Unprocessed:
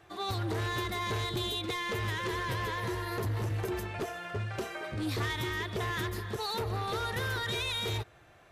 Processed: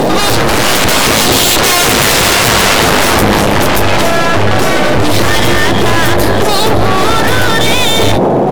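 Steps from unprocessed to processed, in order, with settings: Doppler pass-by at 2.13, 14 m/s, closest 12 m; in parallel at -1.5 dB: compressor, threshold -45 dBFS, peak gain reduction 13.5 dB; on the sum: half-wave rectifier; band noise 120–760 Hz -53 dBFS; sine folder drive 14 dB, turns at -25.5 dBFS; doubler 15 ms -14 dB; on a send: reverse echo 0.262 s -17 dB; on the sum: maximiser +31.5 dB; gain -1 dB

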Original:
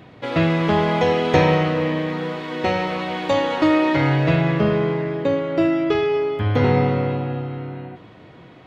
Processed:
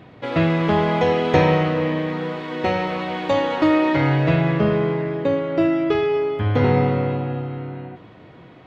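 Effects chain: high shelf 4600 Hz -6.5 dB

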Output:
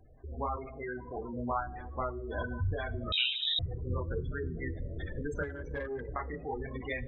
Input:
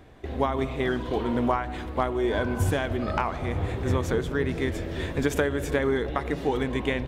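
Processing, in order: chorus voices 6, 0.43 Hz, delay 29 ms, depth 5 ms; spectral gate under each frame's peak -15 dB strong; two-slope reverb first 0.67 s, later 3 s, from -26 dB, DRR 19 dB; 3.12–3.59 inverted band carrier 3800 Hz; bell 290 Hz -10.5 dB 2.4 oct; notch 920 Hz, Q 19; 0.56–1.33 low shelf 120 Hz -10 dB; 5.43–6.09 tube stage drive 27 dB, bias 0.45

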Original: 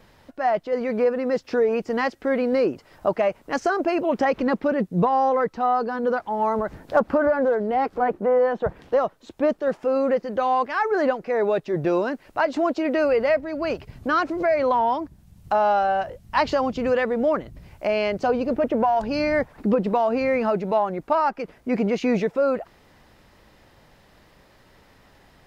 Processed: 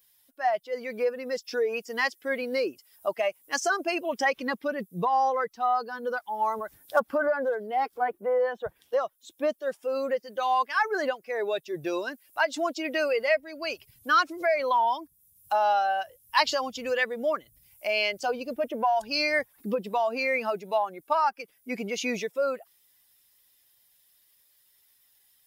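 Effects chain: per-bin expansion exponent 1.5; tilt +4.5 dB/oct

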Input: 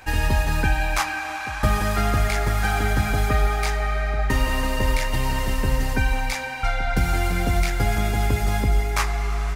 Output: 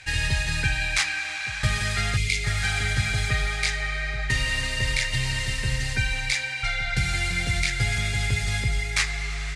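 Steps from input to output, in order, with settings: steep low-pass 11000 Hz 36 dB/oct; spectral gain 2.16–2.44, 480–2000 Hz -17 dB; ten-band EQ 125 Hz +12 dB, 250 Hz -8 dB, 1000 Hz -8 dB, 2000 Hz +12 dB, 4000 Hz +11 dB, 8000 Hz +10 dB; gain -8.5 dB

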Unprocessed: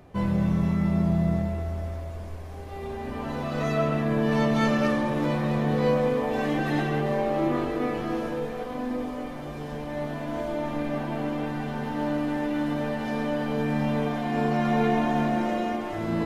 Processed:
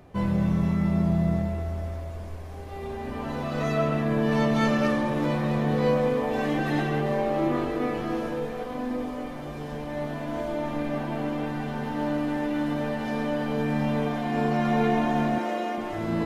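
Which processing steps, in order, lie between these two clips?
15.38–15.78 HPF 300 Hz 12 dB/oct

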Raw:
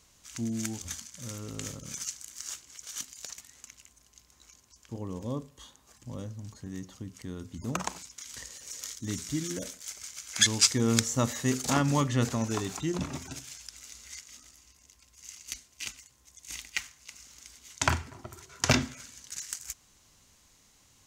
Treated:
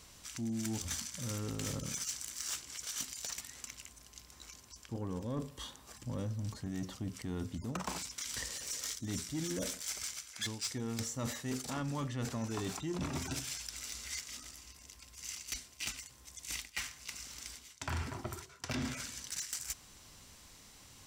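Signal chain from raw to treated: notch 6600 Hz, Q 9.6; reverse; compressor 20:1, threshold -38 dBFS, peak gain reduction 22 dB; reverse; soft clip -35.5 dBFS, distortion -16 dB; gain +6 dB

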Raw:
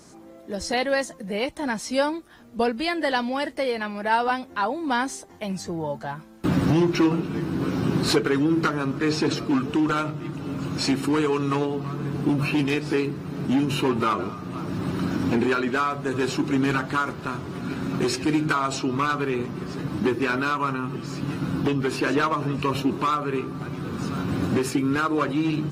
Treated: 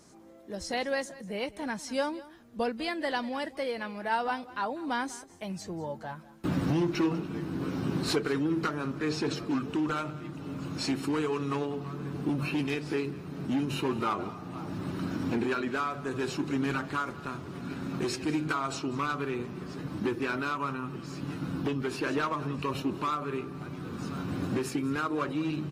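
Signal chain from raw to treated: 14.05–14.75 bell 800 Hz +8.5 dB 0.24 oct; echo 0.196 s -18.5 dB; gain -7.5 dB

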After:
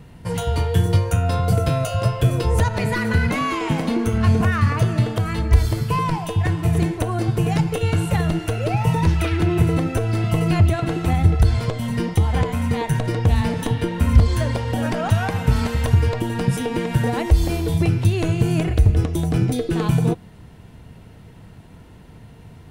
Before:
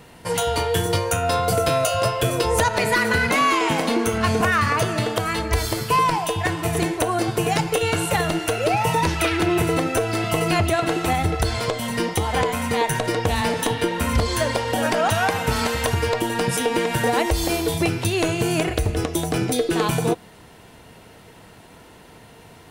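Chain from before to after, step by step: tone controls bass +15 dB, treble -3 dB; gain -5.5 dB

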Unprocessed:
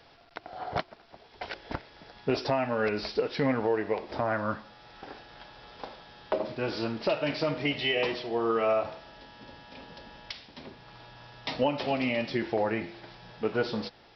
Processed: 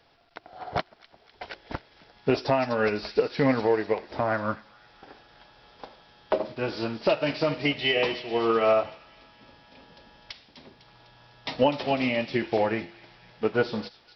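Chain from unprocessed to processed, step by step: on a send: thin delay 0.251 s, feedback 59%, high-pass 2300 Hz, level -9 dB; on the sum: upward expander 1.5:1, over -44 dBFS; gain +5.5 dB

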